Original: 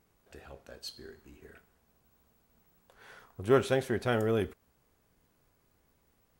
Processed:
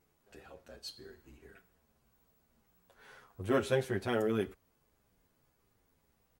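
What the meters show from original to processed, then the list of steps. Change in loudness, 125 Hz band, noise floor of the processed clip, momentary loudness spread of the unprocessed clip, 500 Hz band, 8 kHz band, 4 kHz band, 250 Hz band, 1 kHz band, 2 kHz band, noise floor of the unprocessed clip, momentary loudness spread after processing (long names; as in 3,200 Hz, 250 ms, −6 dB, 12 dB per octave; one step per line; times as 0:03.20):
−3.5 dB, −4.5 dB, −75 dBFS, 18 LU, −4.0 dB, −3.0 dB, −2.5 dB, −2.0 dB, −4.0 dB, −3.0 dB, −72 dBFS, 17 LU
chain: barber-pole flanger 8.7 ms −1.7 Hz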